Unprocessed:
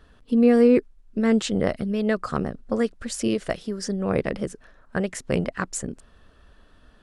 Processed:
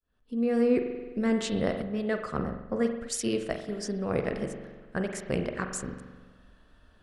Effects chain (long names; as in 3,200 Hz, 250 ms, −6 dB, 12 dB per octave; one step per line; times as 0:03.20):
fade in at the beginning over 0.84 s
spring reverb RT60 1.4 s, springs 43 ms, chirp 25 ms, DRR 5 dB
0:01.82–0:03.69: multiband upward and downward expander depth 70%
level −5.5 dB